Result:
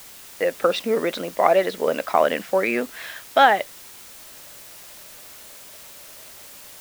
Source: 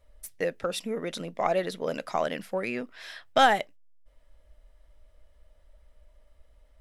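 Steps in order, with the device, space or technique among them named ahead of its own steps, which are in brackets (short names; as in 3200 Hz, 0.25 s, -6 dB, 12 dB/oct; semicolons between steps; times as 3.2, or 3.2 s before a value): dictaphone (BPF 290–3200 Hz; AGC gain up to 15 dB; wow and flutter; white noise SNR 19 dB); gain -1 dB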